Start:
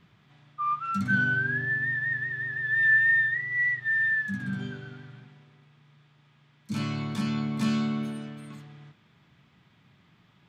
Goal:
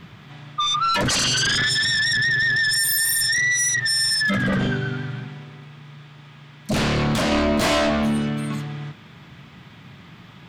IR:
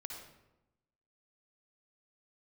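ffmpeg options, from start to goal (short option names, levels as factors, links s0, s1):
-filter_complex "[0:a]asettb=1/sr,asplit=3[s0][s1][s2];[s0]atrim=end=1.374[s3];[s1]atrim=start=1.37:end=2.04,asetpts=PTS-STARTPTS,afade=t=in:d=0.004:c=qsin,afade=t=out:st=0.666:d=0.004:c=qsin,equalizer=f=1100:w=5.4:g=13[s4];[s2]atrim=start=2.036[s5];[s3][s4]acrossfade=d=0.004:c1=hsin:c2=qsin[s6];[s6][s5]acrossfade=d=0.004:c1=qsin:c2=hsin,aeval=exprs='0.237*sin(PI/2*7.94*val(0)/0.237)':c=same,asettb=1/sr,asplit=3[s7][s8][s9];[s7]atrim=end=7.294[s10];[s8]atrim=start=7.29:end=7.9,asetpts=PTS-STARTPTS,afade=t=in:d=0.004:c=qsin,afade=t=out:st=0.606:d=0.004:c=qsin,asplit=2[s11][s12];[s12]adelay=24,volume=0.596[s13];[s11][s13]amix=inputs=2:normalize=0,atrim=end_sample=26901[s14];[s9]atrim=start=7.896[s15];[s10][s14]acrossfade=d=0.004:c1=hsin:c2=qsin[s16];[s16][s15]acrossfade=d=0.004:c1=qsin:c2=hsin,volume=0.562"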